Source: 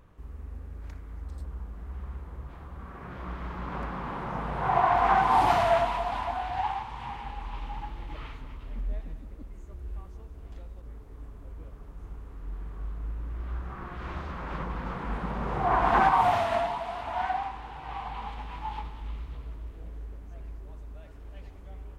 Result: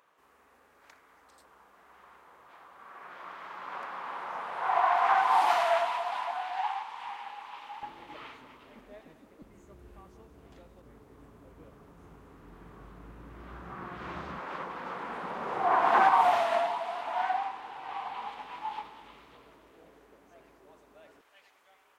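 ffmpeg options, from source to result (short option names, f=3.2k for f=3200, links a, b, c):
-af "asetnsamples=n=441:p=0,asendcmd='7.83 highpass f 310;9.42 highpass f 150;14.39 highpass f 370;21.21 highpass f 1100',highpass=730"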